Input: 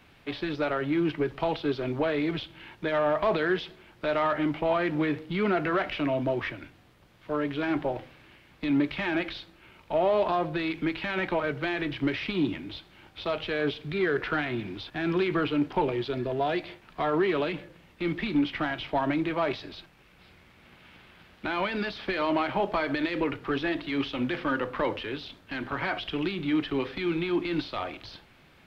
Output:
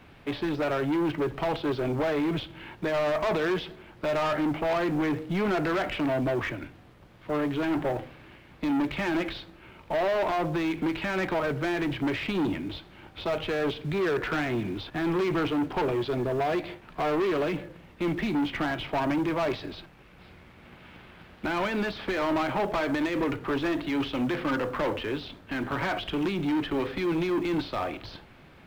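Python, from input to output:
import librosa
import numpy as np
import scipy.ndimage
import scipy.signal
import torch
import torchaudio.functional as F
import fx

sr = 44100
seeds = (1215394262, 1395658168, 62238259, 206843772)

p1 = fx.high_shelf(x, sr, hz=2100.0, db=-8.5)
p2 = 10.0 ** (-29.5 / 20.0) * np.tanh(p1 / 10.0 ** (-29.5 / 20.0))
p3 = fx.quant_float(p2, sr, bits=2)
p4 = p2 + (p3 * librosa.db_to_amplitude(-8.0))
y = p4 * librosa.db_to_amplitude(3.5)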